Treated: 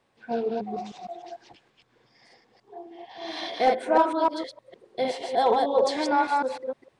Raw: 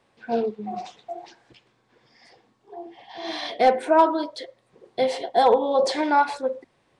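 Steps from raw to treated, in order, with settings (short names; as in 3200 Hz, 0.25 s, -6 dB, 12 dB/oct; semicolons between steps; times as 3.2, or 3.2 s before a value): reverse delay 0.153 s, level -2 dB; gain -4.5 dB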